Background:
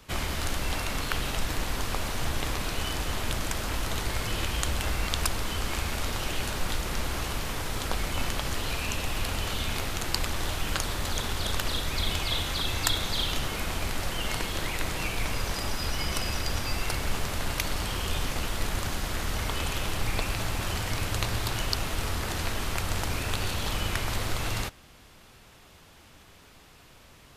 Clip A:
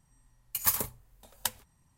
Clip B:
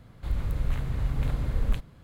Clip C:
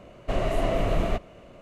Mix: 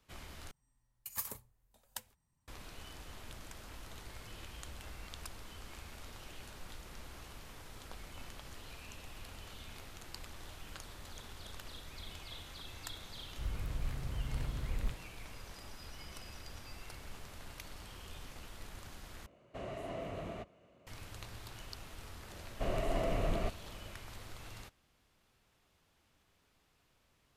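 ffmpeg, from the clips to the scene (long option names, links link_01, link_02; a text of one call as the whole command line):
ffmpeg -i bed.wav -i cue0.wav -i cue1.wav -i cue2.wav -filter_complex "[3:a]asplit=2[link_01][link_02];[0:a]volume=-19.5dB[link_03];[link_01]highpass=74[link_04];[link_03]asplit=3[link_05][link_06][link_07];[link_05]atrim=end=0.514[link_08];[1:a]atrim=end=1.97,asetpts=PTS-STARTPTS,volume=-13dB[link_09];[link_06]atrim=start=2.476:end=19.264[link_10];[link_04]atrim=end=1.61,asetpts=PTS-STARTPTS,volume=-15.5dB[link_11];[link_07]atrim=start=20.866[link_12];[2:a]atrim=end=2.03,asetpts=PTS-STARTPTS,volume=-10.5dB,afade=type=in:duration=0.004:curve=hsin,afade=type=out:start_time=2.026:duration=0.004:curve=hsin,adelay=13150[link_13];[link_02]atrim=end=1.61,asetpts=PTS-STARTPTS,volume=-9dB,afade=type=in:duration=0.004:curve=hsin,afade=type=out:start_time=1.606:duration=0.004:curve=hsin,adelay=22320[link_14];[link_08][link_09]acrossfade=duration=0.004:curve1=hsin:curve2=hsin[link_15];[link_15][link_10]acrossfade=duration=0.004:curve1=hsin:curve2=hsin[link_16];[link_16][link_11]acrossfade=duration=0.004:curve1=hsin:curve2=hsin[link_17];[link_17][link_12]acrossfade=duration=0.004:curve1=hsin:curve2=hsin[link_18];[link_18][link_13][link_14]amix=inputs=3:normalize=0" out.wav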